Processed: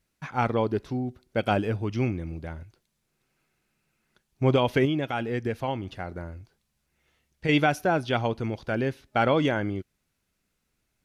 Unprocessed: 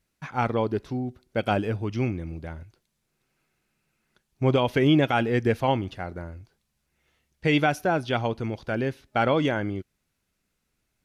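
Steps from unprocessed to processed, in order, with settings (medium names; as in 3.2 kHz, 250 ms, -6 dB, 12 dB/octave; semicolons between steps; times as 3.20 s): 4.85–7.49 s: compression 2:1, threshold -30 dBFS, peak gain reduction 8.5 dB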